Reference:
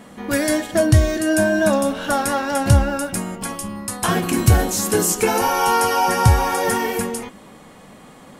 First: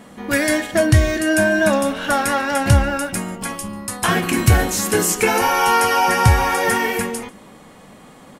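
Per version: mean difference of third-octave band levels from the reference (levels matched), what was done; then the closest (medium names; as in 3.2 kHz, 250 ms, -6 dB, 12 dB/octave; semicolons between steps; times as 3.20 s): 1.5 dB: dynamic bell 2.1 kHz, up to +7 dB, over -38 dBFS, Q 1.2; on a send: delay 142 ms -24 dB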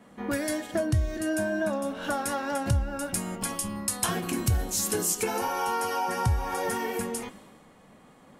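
2.5 dB: compression 5:1, threshold -27 dBFS, peak gain reduction 17 dB; three bands expanded up and down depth 70%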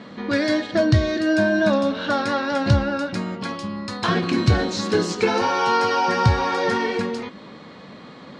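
5.5 dB: cabinet simulation 100–4800 Hz, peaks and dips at 770 Hz -6 dB, 2.9 kHz -3 dB, 4.1 kHz +7 dB; in parallel at -3 dB: compression, threshold -33 dBFS, peak gain reduction 20.5 dB; on the sum: trim -1.5 dB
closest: first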